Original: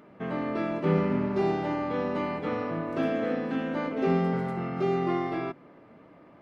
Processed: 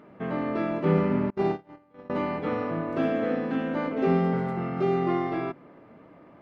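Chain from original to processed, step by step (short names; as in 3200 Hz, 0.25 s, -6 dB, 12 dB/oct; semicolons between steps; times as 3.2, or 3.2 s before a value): high shelf 4300 Hz -8 dB; 1.3–2.1 gate -25 dBFS, range -33 dB; gain +2 dB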